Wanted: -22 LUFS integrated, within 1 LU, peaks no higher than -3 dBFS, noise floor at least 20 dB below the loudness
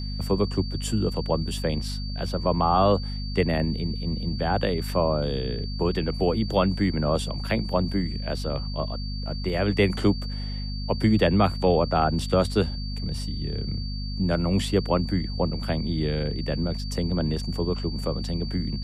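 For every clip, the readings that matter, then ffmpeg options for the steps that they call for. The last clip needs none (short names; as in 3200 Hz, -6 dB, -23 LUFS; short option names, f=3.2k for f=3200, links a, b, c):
hum 50 Hz; harmonics up to 250 Hz; hum level -28 dBFS; steady tone 4600 Hz; tone level -38 dBFS; loudness -26.0 LUFS; peak -9.5 dBFS; loudness target -22.0 LUFS
-> -af "bandreject=f=50:t=h:w=6,bandreject=f=100:t=h:w=6,bandreject=f=150:t=h:w=6,bandreject=f=200:t=h:w=6,bandreject=f=250:t=h:w=6"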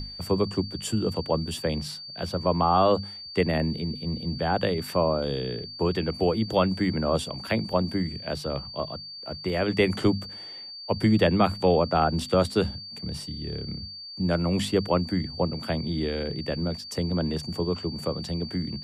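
hum none; steady tone 4600 Hz; tone level -38 dBFS
-> -af "bandreject=f=4.6k:w=30"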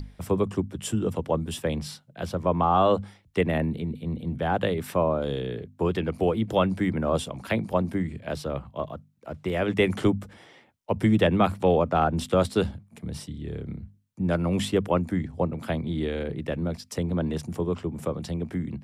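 steady tone none; loudness -27.0 LUFS; peak -9.0 dBFS; loudness target -22.0 LUFS
-> -af "volume=5dB"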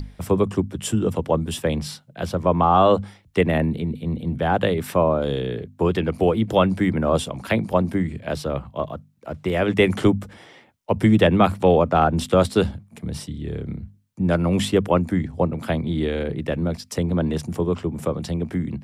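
loudness -22.0 LUFS; peak -4.0 dBFS; noise floor -54 dBFS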